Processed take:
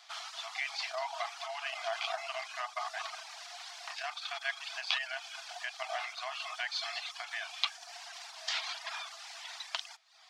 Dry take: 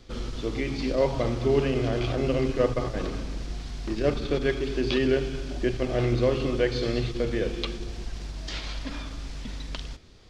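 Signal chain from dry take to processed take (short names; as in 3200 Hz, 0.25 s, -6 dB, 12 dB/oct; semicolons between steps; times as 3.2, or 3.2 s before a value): reverb removal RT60 0.67 s; compressor 4:1, threshold -25 dBFS, peak gain reduction 7 dB; brick-wall FIR high-pass 640 Hz; gain +3 dB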